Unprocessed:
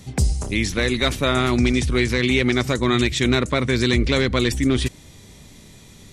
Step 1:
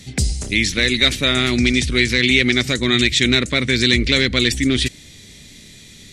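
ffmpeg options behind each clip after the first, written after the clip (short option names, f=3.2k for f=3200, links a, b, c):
-af "equalizer=f=250:t=o:w=1:g=3,equalizer=f=1k:t=o:w=1:g=-9,equalizer=f=2k:t=o:w=1:g=8,equalizer=f=4k:t=o:w=1:g=8,equalizer=f=8k:t=o:w=1:g=5,volume=-1dB"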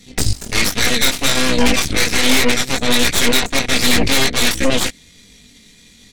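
-af "aecho=1:1:4.2:0.56,flanger=delay=19.5:depth=3.4:speed=1.3,aeval=exprs='0.631*(cos(1*acos(clip(val(0)/0.631,-1,1)))-cos(1*PI/2))+0.282*(cos(8*acos(clip(val(0)/0.631,-1,1)))-cos(8*PI/2))':c=same,volume=-2.5dB"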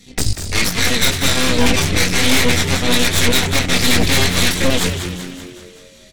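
-filter_complex "[0:a]asplit=8[a][b][c][d][e][f][g][h];[b]adelay=191,afreqshift=-90,volume=-8.5dB[i];[c]adelay=382,afreqshift=-180,volume=-13.5dB[j];[d]adelay=573,afreqshift=-270,volume=-18.6dB[k];[e]adelay=764,afreqshift=-360,volume=-23.6dB[l];[f]adelay=955,afreqshift=-450,volume=-28.6dB[m];[g]adelay=1146,afreqshift=-540,volume=-33.7dB[n];[h]adelay=1337,afreqshift=-630,volume=-38.7dB[o];[a][i][j][k][l][m][n][o]amix=inputs=8:normalize=0,volume=-1dB"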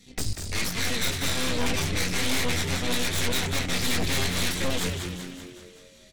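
-af "asoftclip=type=tanh:threshold=-9.5dB,volume=-8.5dB"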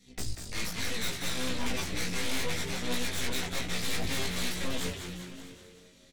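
-af "flanger=delay=15.5:depth=2.9:speed=0.62,aecho=1:1:647:0.112,volume=-3.5dB"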